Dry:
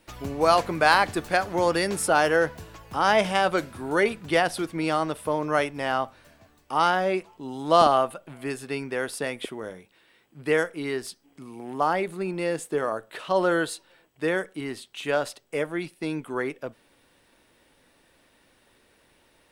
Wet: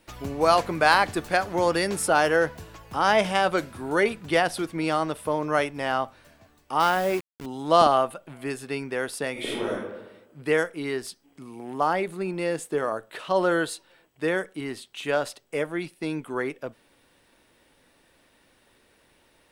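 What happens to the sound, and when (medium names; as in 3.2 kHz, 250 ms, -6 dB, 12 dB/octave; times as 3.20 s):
6.80–7.46 s: send-on-delta sampling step -33 dBFS
9.32–9.72 s: reverb throw, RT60 1.1 s, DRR -6.5 dB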